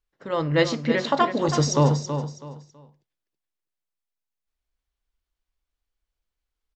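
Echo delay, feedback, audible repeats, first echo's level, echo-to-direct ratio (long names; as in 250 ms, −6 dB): 326 ms, 27%, 3, −9.0 dB, −8.5 dB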